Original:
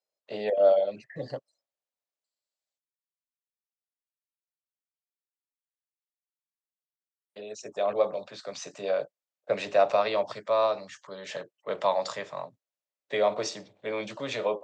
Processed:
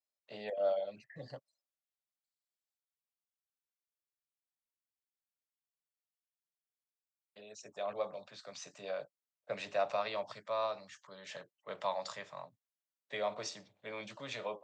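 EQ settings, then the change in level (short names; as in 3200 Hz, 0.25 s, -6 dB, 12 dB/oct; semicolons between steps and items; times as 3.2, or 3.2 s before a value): bell 390 Hz -7.5 dB 1.4 oct; -7.5 dB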